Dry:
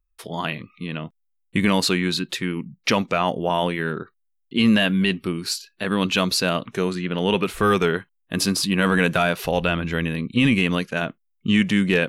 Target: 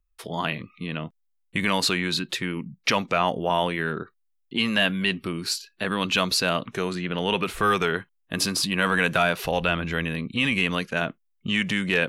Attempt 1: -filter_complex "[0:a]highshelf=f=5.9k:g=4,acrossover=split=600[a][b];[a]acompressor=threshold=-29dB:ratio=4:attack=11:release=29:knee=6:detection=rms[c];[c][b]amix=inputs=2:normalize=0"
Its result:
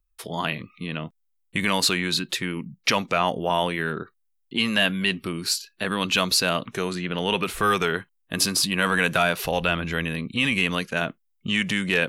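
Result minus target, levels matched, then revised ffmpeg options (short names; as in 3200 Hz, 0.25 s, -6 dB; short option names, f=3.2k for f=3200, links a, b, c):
8000 Hz band +3.0 dB
-filter_complex "[0:a]highshelf=f=5.9k:g=-2.5,acrossover=split=600[a][b];[a]acompressor=threshold=-29dB:ratio=4:attack=11:release=29:knee=6:detection=rms[c];[c][b]amix=inputs=2:normalize=0"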